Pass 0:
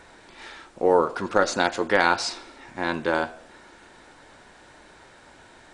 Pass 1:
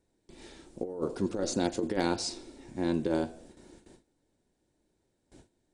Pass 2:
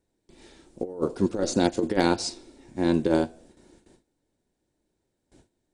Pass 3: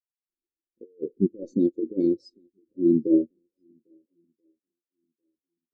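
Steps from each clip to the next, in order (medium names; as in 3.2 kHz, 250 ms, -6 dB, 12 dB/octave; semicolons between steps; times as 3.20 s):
gate with hold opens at -39 dBFS; FFT filter 340 Hz 0 dB, 1.3 kHz -21 dB, 8.8 kHz -3 dB; compressor with a negative ratio -28 dBFS, ratio -0.5
upward expansion 1.5:1, over -44 dBFS; trim +7.5 dB
high-order bell 1.1 kHz -13 dB; shuffle delay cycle 1332 ms, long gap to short 1.5:1, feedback 40%, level -16 dB; spectral contrast expander 2.5:1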